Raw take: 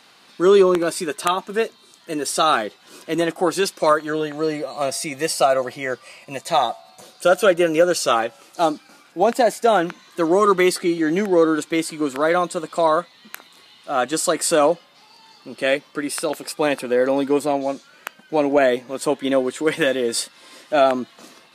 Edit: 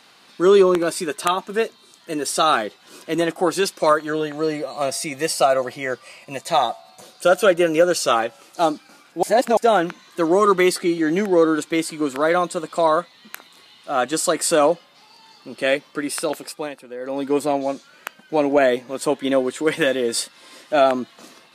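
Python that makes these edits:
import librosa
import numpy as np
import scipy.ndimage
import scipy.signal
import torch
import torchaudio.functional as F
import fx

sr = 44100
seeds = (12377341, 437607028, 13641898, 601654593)

y = fx.edit(x, sr, fx.reverse_span(start_s=9.23, length_s=0.34),
    fx.fade_down_up(start_s=16.33, length_s=1.07, db=-14.5, fade_s=0.4), tone=tone)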